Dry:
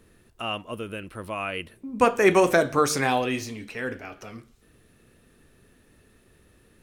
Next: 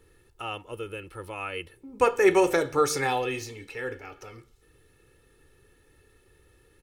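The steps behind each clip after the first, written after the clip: comb 2.3 ms, depth 72%; gain -4.5 dB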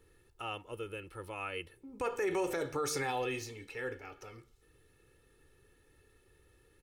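limiter -19.5 dBFS, peak gain reduction 12 dB; gain -5.5 dB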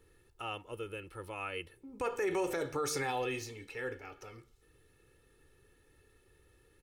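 nothing audible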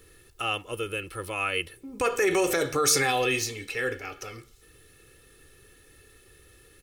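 Butterworth band-stop 900 Hz, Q 7.8; high shelf 2200 Hz +8.5 dB; gain +8.5 dB

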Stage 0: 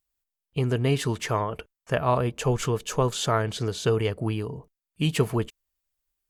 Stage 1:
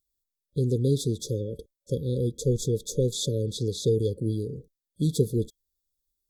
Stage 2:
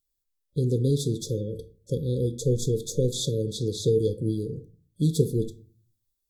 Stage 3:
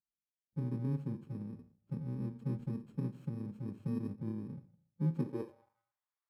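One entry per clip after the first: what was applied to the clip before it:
FFT band-reject 570–3300 Hz
shoebox room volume 230 m³, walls furnished, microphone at 0.56 m
FFT order left unsorted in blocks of 64 samples; band-pass sweep 200 Hz -> 1100 Hz, 5.13–5.79; gain -3.5 dB

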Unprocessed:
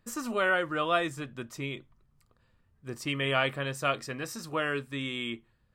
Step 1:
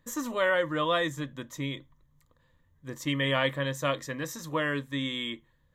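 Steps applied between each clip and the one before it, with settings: ripple EQ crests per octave 1.1, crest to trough 10 dB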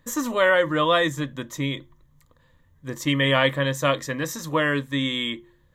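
de-hum 175.5 Hz, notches 2; gain +7 dB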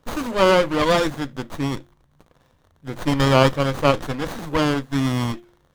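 tilt +1.5 dB/oct; crackle 100/s -53 dBFS; running maximum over 17 samples; gain +3.5 dB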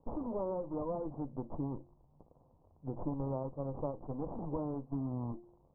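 requantised 10-bit, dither triangular; compressor 6:1, threshold -28 dBFS, peak gain reduction 18.5 dB; steep low-pass 970 Hz 48 dB/oct; gain -6 dB

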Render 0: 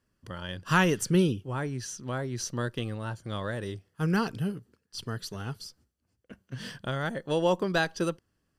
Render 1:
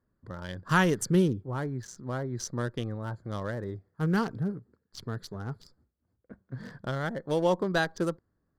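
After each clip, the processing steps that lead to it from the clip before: Wiener smoothing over 15 samples; bell 2600 Hz -8 dB 0.22 oct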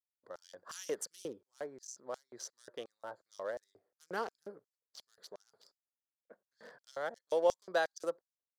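expander -56 dBFS; LFO high-pass square 2.8 Hz 550–5900 Hz; gain -8 dB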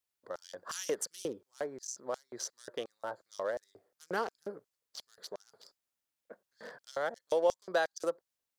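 compressor 1.5:1, threshold -42 dBFS, peak gain reduction 7 dB; gain +7 dB

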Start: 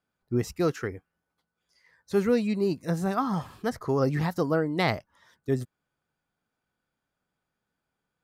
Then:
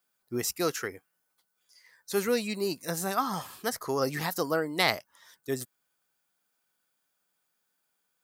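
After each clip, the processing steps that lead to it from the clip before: RIAA curve recording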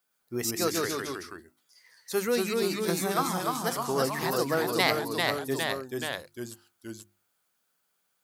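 echoes that change speed 0.108 s, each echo -1 st, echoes 3; notches 50/100/150/200/250/300/350 Hz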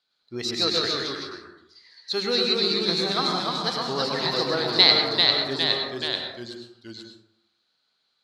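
synth low-pass 4100 Hz, resonance Q 9.9; plate-style reverb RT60 0.69 s, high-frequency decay 0.45×, pre-delay 90 ms, DRR 3.5 dB; gain -1 dB

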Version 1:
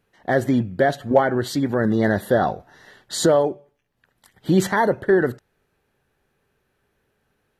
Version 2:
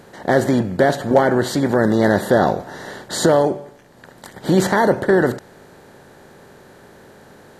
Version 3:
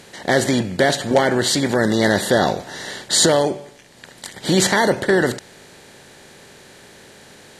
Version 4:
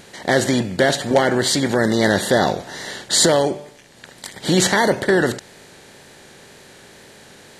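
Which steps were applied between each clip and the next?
per-bin compression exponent 0.6
band shelf 4600 Hz +11.5 dB 2.7 oct; gain -2 dB
wow and flutter 40 cents

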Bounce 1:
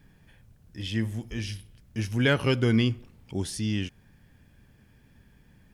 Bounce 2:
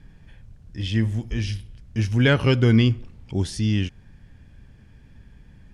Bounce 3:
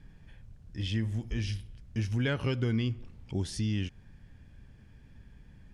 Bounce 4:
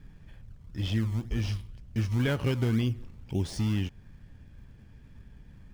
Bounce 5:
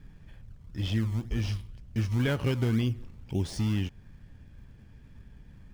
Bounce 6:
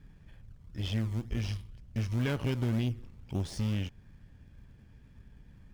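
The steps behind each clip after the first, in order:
LPF 7600 Hz 12 dB/oct; low shelf 94 Hz +11 dB; gain +3.5 dB
compressor 3:1, threshold -23 dBFS, peak gain reduction 8.5 dB; gain -5 dB
median filter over 3 samples; in parallel at -8 dB: decimation with a swept rate 28×, swing 100% 2 Hz
nothing audible
tube stage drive 24 dB, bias 0.65

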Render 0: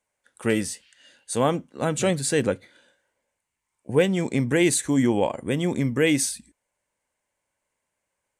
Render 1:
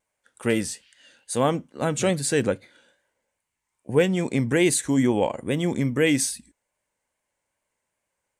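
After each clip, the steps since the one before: vibrato 2.4 Hz 51 cents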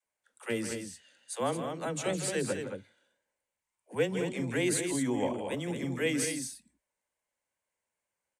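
low shelf 270 Hz -4.5 dB; dispersion lows, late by 66 ms, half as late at 330 Hz; on a send: loudspeakers at several distances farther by 55 m -10 dB, 76 m -7 dB; on the sum: gain -8.5 dB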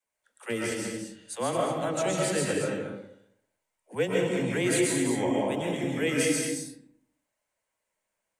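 digital reverb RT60 0.72 s, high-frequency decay 0.5×, pre-delay 90 ms, DRR -2 dB; gain +1 dB

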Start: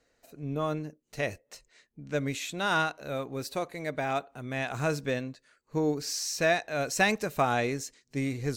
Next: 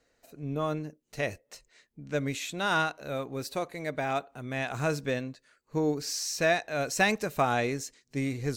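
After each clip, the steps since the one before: de-esser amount 50%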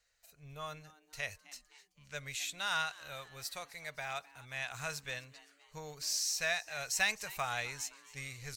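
passive tone stack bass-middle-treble 10-0-10; frequency-shifting echo 0.259 s, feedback 53%, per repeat +150 Hz, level -20 dB

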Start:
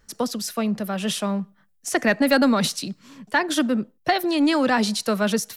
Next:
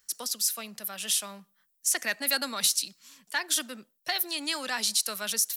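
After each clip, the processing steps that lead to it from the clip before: pre-emphasis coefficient 0.97; gain +4.5 dB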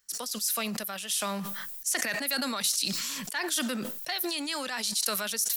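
sustainer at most 20 dB/s; gain -4 dB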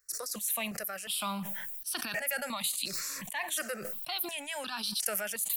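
step phaser 2.8 Hz 850–2000 Hz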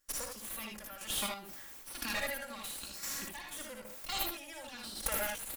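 minimum comb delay 3.6 ms; chopper 0.99 Hz, depth 65%, duty 25%; on a send: early reflections 59 ms -5.5 dB, 77 ms -4.5 dB; on the sum: gain -1 dB

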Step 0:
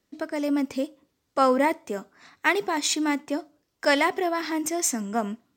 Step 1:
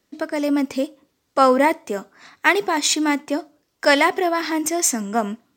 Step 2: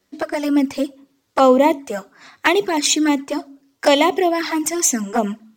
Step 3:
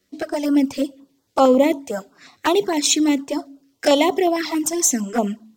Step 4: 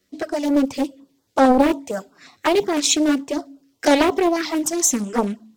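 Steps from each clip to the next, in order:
low shelf 190 Hz -4.5 dB; gain +6 dB
de-hum 55.67 Hz, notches 5; envelope flanger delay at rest 10.9 ms, full sweep at -15.5 dBFS; gain +5 dB
stepped notch 11 Hz 880–2500 Hz
Doppler distortion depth 0.52 ms

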